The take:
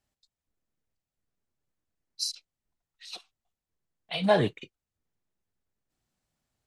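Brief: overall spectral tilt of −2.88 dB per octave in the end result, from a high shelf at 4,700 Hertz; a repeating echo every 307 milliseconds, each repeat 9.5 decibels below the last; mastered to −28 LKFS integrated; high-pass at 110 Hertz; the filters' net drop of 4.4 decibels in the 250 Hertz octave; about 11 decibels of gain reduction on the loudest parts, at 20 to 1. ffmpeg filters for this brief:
ffmpeg -i in.wav -af "highpass=110,equalizer=frequency=250:width_type=o:gain=-6,highshelf=frequency=4700:gain=5,acompressor=threshold=-27dB:ratio=20,aecho=1:1:307|614|921|1228:0.335|0.111|0.0365|0.012,volume=8dB" out.wav

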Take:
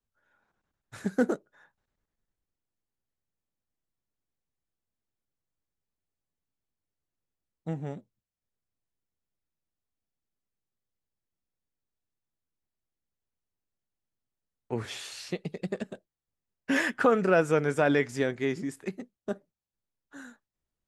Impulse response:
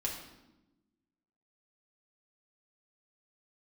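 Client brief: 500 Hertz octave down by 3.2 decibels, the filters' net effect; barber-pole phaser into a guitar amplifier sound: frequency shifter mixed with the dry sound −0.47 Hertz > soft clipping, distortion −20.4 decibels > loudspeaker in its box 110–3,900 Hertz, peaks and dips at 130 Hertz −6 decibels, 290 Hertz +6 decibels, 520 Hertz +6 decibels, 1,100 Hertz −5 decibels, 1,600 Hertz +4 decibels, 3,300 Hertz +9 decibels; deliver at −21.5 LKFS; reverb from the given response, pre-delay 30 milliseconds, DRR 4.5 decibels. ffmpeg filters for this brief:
-filter_complex "[0:a]equalizer=frequency=500:width_type=o:gain=-8,asplit=2[link_01][link_02];[1:a]atrim=start_sample=2205,adelay=30[link_03];[link_02][link_03]afir=irnorm=-1:irlink=0,volume=-7dB[link_04];[link_01][link_04]amix=inputs=2:normalize=0,asplit=2[link_05][link_06];[link_06]afreqshift=-0.47[link_07];[link_05][link_07]amix=inputs=2:normalize=1,asoftclip=threshold=-19.5dB,highpass=110,equalizer=frequency=130:width_type=q:width=4:gain=-6,equalizer=frequency=290:width_type=q:width=4:gain=6,equalizer=frequency=520:width_type=q:width=4:gain=6,equalizer=frequency=1100:width_type=q:width=4:gain=-5,equalizer=frequency=1600:width_type=q:width=4:gain=4,equalizer=frequency=3300:width_type=q:width=4:gain=9,lowpass=frequency=3900:width=0.5412,lowpass=frequency=3900:width=1.3066,volume=11dB"

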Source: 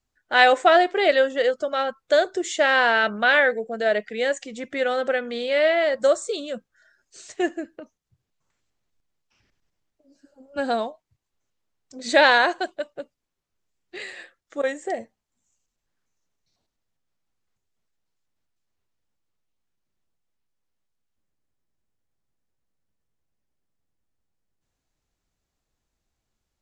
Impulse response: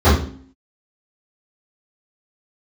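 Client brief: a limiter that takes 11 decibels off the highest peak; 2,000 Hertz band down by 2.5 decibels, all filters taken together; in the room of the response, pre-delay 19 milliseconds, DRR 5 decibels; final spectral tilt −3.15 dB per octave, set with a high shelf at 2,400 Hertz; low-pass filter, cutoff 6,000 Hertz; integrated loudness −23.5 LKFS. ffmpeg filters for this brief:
-filter_complex "[0:a]lowpass=6000,equalizer=frequency=2000:width_type=o:gain=-7,highshelf=frequency=2400:gain=8.5,alimiter=limit=-15.5dB:level=0:latency=1,asplit=2[link_01][link_02];[1:a]atrim=start_sample=2205,adelay=19[link_03];[link_02][link_03]afir=irnorm=-1:irlink=0,volume=-31dB[link_04];[link_01][link_04]amix=inputs=2:normalize=0,volume=0.5dB"

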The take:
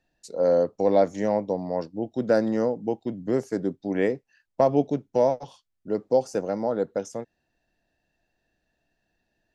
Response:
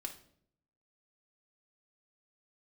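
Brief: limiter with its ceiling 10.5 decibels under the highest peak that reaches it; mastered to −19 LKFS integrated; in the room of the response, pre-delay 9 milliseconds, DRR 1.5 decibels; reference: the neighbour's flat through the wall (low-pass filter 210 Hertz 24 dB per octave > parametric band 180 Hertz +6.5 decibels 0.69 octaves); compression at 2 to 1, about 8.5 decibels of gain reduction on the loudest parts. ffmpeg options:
-filter_complex "[0:a]acompressor=threshold=-31dB:ratio=2,alimiter=limit=-24dB:level=0:latency=1,asplit=2[link_01][link_02];[1:a]atrim=start_sample=2205,adelay=9[link_03];[link_02][link_03]afir=irnorm=-1:irlink=0,volume=0.5dB[link_04];[link_01][link_04]amix=inputs=2:normalize=0,lowpass=frequency=210:width=0.5412,lowpass=frequency=210:width=1.3066,equalizer=frequency=180:width_type=o:width=0.69:gain=6.5,volume=20dB"

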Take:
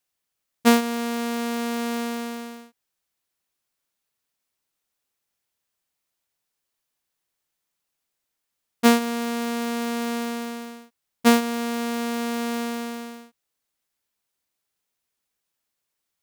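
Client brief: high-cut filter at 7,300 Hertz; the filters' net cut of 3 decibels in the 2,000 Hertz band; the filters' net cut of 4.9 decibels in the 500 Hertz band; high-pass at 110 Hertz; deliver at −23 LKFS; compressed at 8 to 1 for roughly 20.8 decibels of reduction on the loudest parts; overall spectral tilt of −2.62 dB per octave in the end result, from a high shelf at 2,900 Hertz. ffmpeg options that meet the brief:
ffmpeg -i in.wav -af "highpass=110,lowpass=7300,equalizer=frequency=500:width_type=o:gain=-5.5,equalizer=frequency=2000:width_type=o:gain=-6,highshelf=frequency=2900:gain=6.5,acompressor=threshold=-35dB:ratio=8,volume=16.5dB" out.wav

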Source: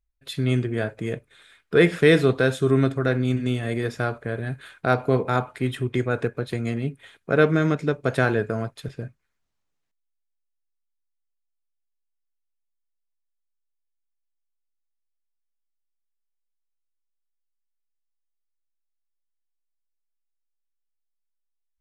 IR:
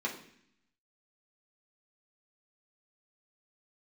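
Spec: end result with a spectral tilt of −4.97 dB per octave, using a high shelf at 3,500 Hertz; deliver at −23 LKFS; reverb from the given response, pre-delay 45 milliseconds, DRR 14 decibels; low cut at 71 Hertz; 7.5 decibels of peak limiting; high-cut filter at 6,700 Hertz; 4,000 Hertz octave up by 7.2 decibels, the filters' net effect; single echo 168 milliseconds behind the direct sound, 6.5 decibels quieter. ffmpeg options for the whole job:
-filter_complex "[0:a]highpass=71,lowpass=6700,highshelf=frequency=3500:gain=5.5,equalizer=frequency=4000:width_type=o:gain=5.5,alimiter=limit=-10dB:level=0:latency=1,aecho=1:1:168:0.473,asplit=2[link_01][link_02];[1:a]atrim=start_sample=2205,adelay=45[link_03];[link_02][link_03]afir=irnorm=-1:irlink=0,volume=-18.5dB[link_04];[link_01][link_04]amix=inputs=2:normalize=0,volume=0.5dB"

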